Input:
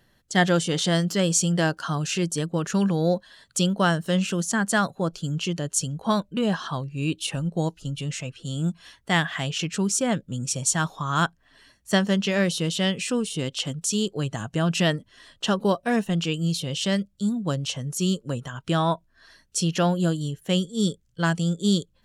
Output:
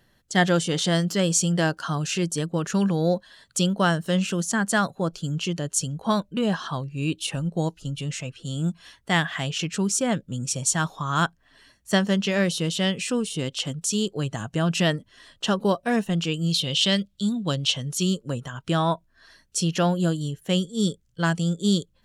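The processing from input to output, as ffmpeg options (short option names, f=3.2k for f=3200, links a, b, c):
-filter_complex "[0:a]asettb=1/sr,asplit=3[a][b][c];[a]atrim=end=16.514[d];[b]atrim=start=16.51:end=18.03,asetpts=PTS-STARTPTS,afade=t=in:d=0.004:c=qsin,afade=t=out:st=1.516:d=0.004:c=qsin,equalizer=f=3.5k:t=o:w=1:g=10[e];[c]atrim=start=18.026[f];[d][e]acrossfade=d=0.004:c1=hsin:c2=qsin[g];[g][f]acrossfade=d=0.004:c1=qsin:c2=hsin"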